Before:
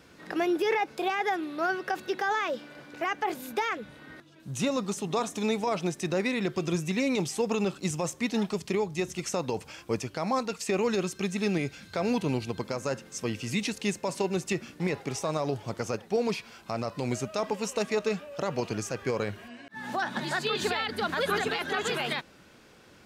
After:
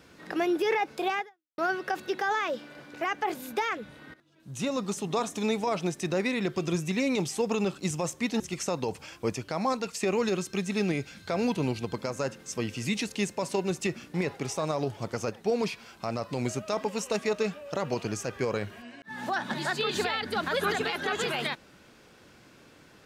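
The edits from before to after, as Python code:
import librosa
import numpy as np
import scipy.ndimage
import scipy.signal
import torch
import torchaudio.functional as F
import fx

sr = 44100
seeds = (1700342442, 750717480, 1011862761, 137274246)

y = fx.edit(x, sr, fx.fade_out_span(start_s=1.19, length_s=0.39, curve='exp'),
    fx.fade_in_from(start_s=4.14, length_s=0.74, floor_db=-15.5),
    fx.cut(start_s=8.4, length_s=0.66), tone=tone)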